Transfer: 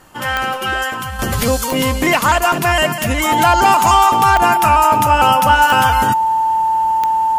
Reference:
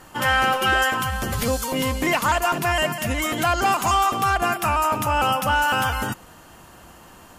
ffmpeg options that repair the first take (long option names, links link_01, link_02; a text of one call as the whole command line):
ffmpeg -i in.wav -af "adeclick=threshold=4,bandreject=frequency=890:width=30,asetnsamples=nb_out_samples=441:pad=0,asendcmd='1.19 volume volume -7dB',volume=0dB" out.wav